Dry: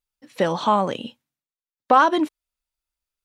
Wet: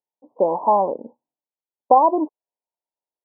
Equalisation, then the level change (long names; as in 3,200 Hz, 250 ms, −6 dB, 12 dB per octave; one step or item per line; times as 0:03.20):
high-pass filter 420 Hz 12 dB per octave
Butterworth low-pass 1,000 Hz 96 dB per octave
+5.0 dB